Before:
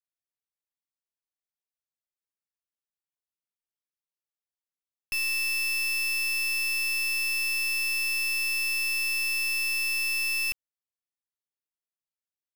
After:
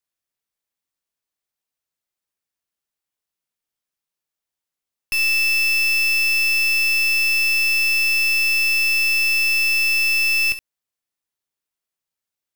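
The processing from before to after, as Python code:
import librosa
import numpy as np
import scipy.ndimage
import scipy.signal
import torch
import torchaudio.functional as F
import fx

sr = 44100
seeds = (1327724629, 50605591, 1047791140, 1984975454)

y = fx.room_early_taps(x, sr, ms=(19, 69), db=(-15.5, -12.0))
y = y * 10.0 ** (7.5 / 20.0)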